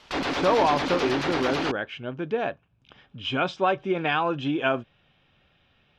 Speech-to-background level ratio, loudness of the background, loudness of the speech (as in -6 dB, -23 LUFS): 1.5 dB, -28.0 LUFS, -26.5 LUFS